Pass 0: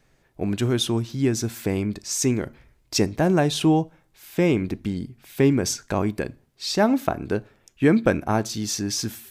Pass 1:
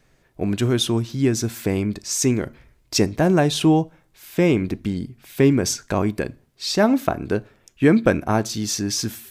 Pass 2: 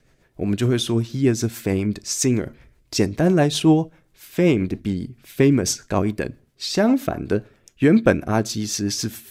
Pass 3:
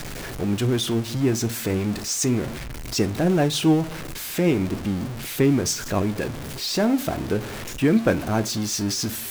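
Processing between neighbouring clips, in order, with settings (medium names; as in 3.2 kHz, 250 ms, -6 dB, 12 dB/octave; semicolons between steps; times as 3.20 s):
band-stop 830 Hz, Q 19; trim +2.5 dB
rotary cabinet horn 7.5 Hz; trim +2 dB
jump at every zero crossing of -23 dBFS; flange 0.37 Hz, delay 6.6 ms, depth 8.2 ms, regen -78%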